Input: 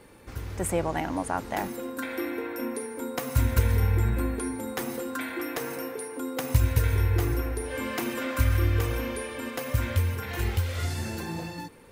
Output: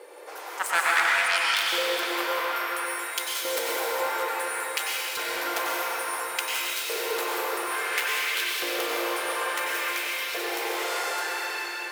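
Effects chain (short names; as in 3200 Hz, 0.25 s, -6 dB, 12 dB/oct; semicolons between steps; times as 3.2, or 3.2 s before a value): brick-wall FIR high-pass 290 Hz; added harmonics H 7 -12 dB, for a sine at -13 dBFS; LFO high-pass saw up 0.58 Hz 460–4500 Hz; reverb RT60 5.0 s, pre-delay 89 ms, DRR -5 dB; in parallel at -8 dB: soft clip -29 dBFS, distortion -11 dB; on the sum: gain +3 dB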